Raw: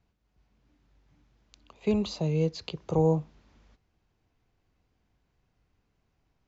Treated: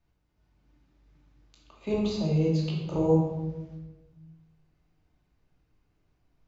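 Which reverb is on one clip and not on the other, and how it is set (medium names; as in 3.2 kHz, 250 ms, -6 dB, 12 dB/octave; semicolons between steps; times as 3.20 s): simulated room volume 620 m³, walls mixed, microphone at 2.6 m; trim -6 dB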